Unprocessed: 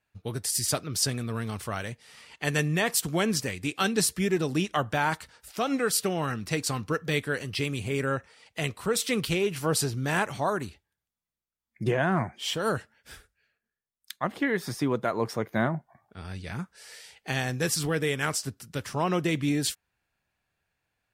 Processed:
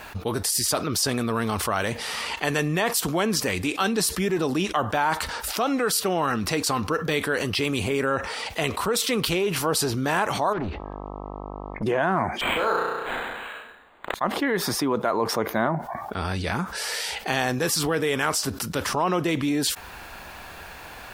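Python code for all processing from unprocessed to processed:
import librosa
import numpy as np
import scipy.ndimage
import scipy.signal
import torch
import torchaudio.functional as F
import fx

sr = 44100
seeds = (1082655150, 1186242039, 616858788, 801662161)

y = fx.overload_stage(x, sr, gain_db=36.0, at=(10.52, 11.82), fade=0.02)
y = fx.dmg_buzz(y, sr, base_hz=50.0, harmonics=26, level_db=-70.0, tilt_db=-3, odd_only=False, at=(10.52, 11.82), fade=0.02)
y = fx.spacing_loss(y, sr, db_at_10k=41, at=(10.52, 11.82), fade=0.02)
y = fx.chain(y, sr, fx.weighting(curve='A'),
    fx.room_flutter(wall_m=5.7, rt60_s=0.56),
    fx.resample_linear(factor=8), at=(12.41, 14.14))
y = fx.graphic_eq_10(y, sr, hz=(125, 1000, 2000, 8000), db=(-10, 5, -3, -4))
y = fx.env_flatten(y, sr, amount_pct=70)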